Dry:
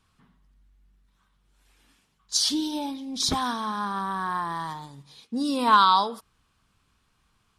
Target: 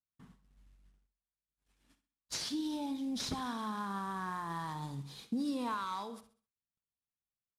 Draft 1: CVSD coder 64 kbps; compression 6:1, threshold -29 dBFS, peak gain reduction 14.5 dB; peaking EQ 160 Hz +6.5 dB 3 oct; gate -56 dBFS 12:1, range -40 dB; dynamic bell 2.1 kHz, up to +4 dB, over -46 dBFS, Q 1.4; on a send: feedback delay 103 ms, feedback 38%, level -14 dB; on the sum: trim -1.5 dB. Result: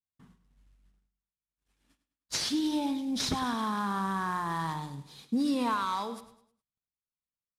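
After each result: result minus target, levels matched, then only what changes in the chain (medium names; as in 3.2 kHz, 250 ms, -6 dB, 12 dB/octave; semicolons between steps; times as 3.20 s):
echo 38 ms late; compression: peak gain reduction -7 dB
change: feedback delay 65 ms, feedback 38%, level -14 dB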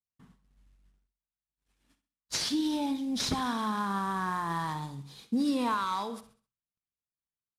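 compression: peak gain reduction -7 dB
change: compression 6:1, threshold -37.5 dBFS, peak gain reduction 22 dB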